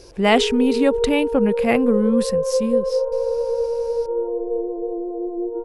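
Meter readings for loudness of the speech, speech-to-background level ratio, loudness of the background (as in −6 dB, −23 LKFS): −20.0 LKFS, 3.5 dB, −23.5 LKFS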